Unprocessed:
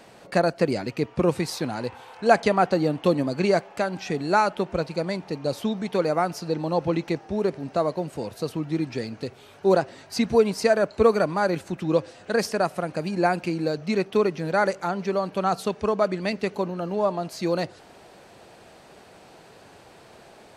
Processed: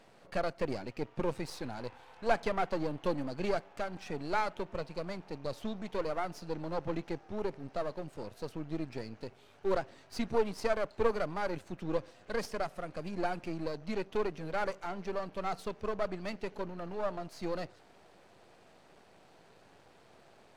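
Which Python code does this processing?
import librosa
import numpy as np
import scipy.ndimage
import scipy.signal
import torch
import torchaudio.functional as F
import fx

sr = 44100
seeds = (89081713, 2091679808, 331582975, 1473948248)

y = np.where(x < 0.0, 10.0 ** (-12.0 / 20.0) * x, x)
y = fx.high_shelf(y, sr, hz=6700.0, db=-6.0)
y = y * librosa.db_to_amplitude(-7.5)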